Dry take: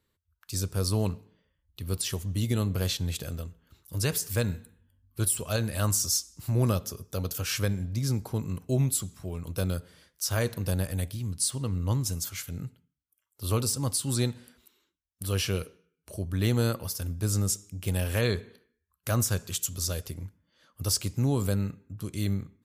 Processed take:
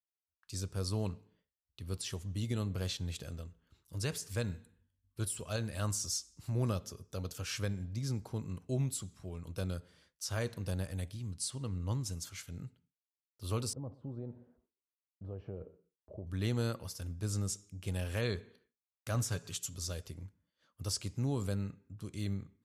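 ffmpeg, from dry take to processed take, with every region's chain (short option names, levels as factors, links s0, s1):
-filter_complex "[0:a]asettb=1/sr,asplit=3[s0][s1][s2];[s0]atrim=end=13.734[s3];[s1]atrim=start=13.73:end=16.27,asetpts=PTS-STARTPTS,afade=t=in:d=0.004:c=qsin,afade=t=out:st=2.536:d=0.004:c=qsin,acompressor=threshold=0.0316:ratio=10:attack=3.2:release=140:knee=1:detection=peak,lowpass=f=640:t=q:w=1.6,aecho=1:1:120:0.0891,atrim=end_sample=112014[s4];[s2]atrim=start=16.266[s5];[s3][s4]acrossfade=d=0.004:c1=hsin:c2=qsin[s6];[s6][s5]acrossfade=d=0.004:c1=qsin:c2=hsin,asettb=1/sr,asplit=3[s7][s8][s9];[s7]atrim=end=19.144[s10];[s8]atrim=start=19.14:end=19.75,asetpts=PTS-STARTPTS,afade=t=in:d=0.004:c=qsin,afade=t=out:st=0.606:d=0.004:c=qsin,aecho=1:1:7:0.5,atrim=end_sample=26901,acompressor=mode=upward:threshold=0.02:ratio=2.5:attack=3.2:release=140:knee=2.83:detection=peak,asoftclip=type=hard:threshold=0.126[s11];[s9]atrim=start=19.746[s12];[s10][s11]acrossfade=d=0.004:c1=hsin:c2=qsin[s13];[s13][s12]acrossfade=d=0.004:c1=qsin:c2=hsin,agate=range=0.0224:threshold=0.00112:ratio=3:detection=peak,lowpass=8800,volume=0.398"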